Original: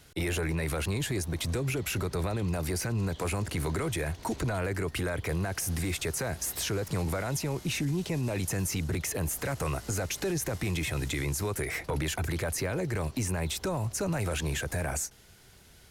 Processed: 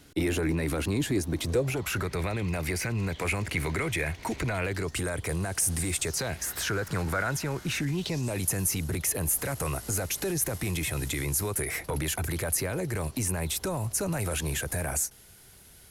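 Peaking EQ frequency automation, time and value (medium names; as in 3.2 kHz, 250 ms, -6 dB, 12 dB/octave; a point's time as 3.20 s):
peaking EQ +11 dB 0.64 oct
1.38 s 280 Hz
2.11 s 2.2 kHz
4.60 s 2.2 kHz
5.01 s 8.9 kHz
6.00 s 8.9 kHz
6.48 s 1.5 kHz
7.80 s 1.5 kHz
8.36 s 11 kHz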